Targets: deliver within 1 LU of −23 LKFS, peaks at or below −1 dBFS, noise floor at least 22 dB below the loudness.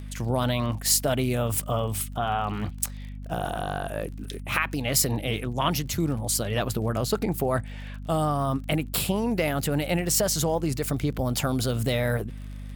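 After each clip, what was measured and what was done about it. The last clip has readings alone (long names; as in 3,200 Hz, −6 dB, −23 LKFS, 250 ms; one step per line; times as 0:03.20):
crackle rate 37 per second; mains hum 50 Hz; hum harmonics up to 250 Hz; level of the hum −35 dBFS; integrated loudness −26.5 LKFS; sample peak −7.5 dBFS; target loudness −23.0 LKFS
→ click removal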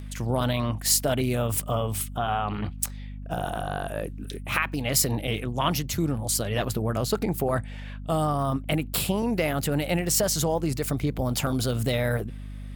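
crackle rate 3.5 per second; mains hum 50 Hz; hum harmonics up to 250 Hz; level of the hum −35 dBFS
→ mains-hum notches 50/100/150/200/250 Hz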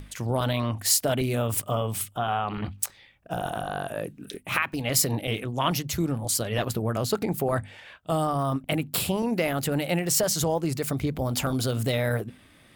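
mains hum none found; integrated loudness −27.0 LKFS; sample peak −7.0 dBFS; target loudness −23.0 LKFS
→ level +4 dB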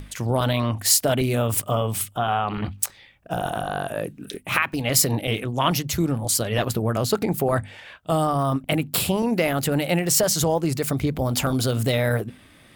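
integrated loudness −23.0 LKFS; sample peak −3.0 dBFS; background noise floor −51 dBFS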